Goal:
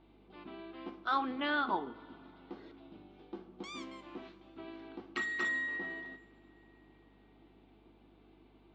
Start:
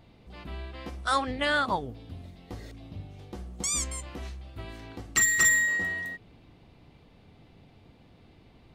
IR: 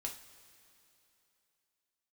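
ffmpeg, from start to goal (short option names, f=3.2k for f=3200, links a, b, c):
-filter_complex "[0:a]highpass=f=220:w=0.5412,highpass=f=220:w=1.3066,equalizer=f=340:t=q:w=4:g=6,equalizer=f=550:t=q:w=4:g=-8,equalizer=f=1.9k:t=q:w=4:g=-7,equalizer=f=2.7k:t=q:w=4:g=-3,lowpass=f=3.5k:w=0.5412,lowpass=f=3.5k:w=1.3066,asplit=2[a][b];[1:a]atrim=start_sample=2205,highshelf=f=5.8k:g=-9.5[c];[b][c]afir=irnorm=-1:irlink=0,volume=-1.5dB[d];[a][d]amix=inputs=2:normalize=0,aeval=exprs='val(0)+0.00126*(sin(2*PI*50*n/s)+sin(2*PI*2*50*n/s)/2+sin(2*PI*3*50*n/s)/3+sin(2*PI*4*50*n/s)/4+sin(2*PI*5*50*n/s)/5)':c=same,volume=-8dB"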